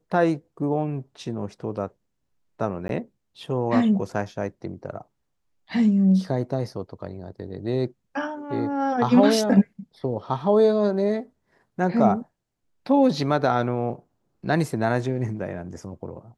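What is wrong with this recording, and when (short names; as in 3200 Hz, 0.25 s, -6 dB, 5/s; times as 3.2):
2.88–2.89 gap 12 ms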